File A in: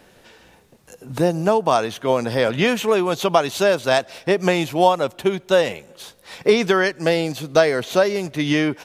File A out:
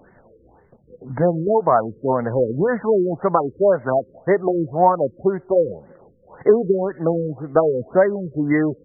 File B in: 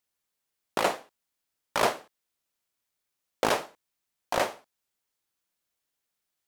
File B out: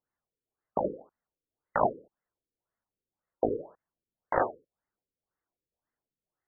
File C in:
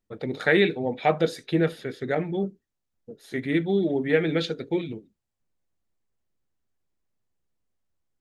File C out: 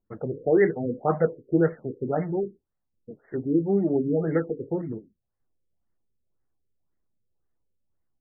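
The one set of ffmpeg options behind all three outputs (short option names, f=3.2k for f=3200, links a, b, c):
-af "flanger=delay=0.3:depth=2.6:regen=-50:speed=1:shape=triangular,afftfilt=real='re*lt(b*sr/1024,520*pow(2200/520,0.5+0.5*sin(2*PI*1.9*pts/sr)))':imag='im*lt(b*sr/1024,520*pow(2200/520,0.5+0.5*sin(2*PI*1.9*pts/sr)))':win_size=1024:overlap=0.75,volume=5dB"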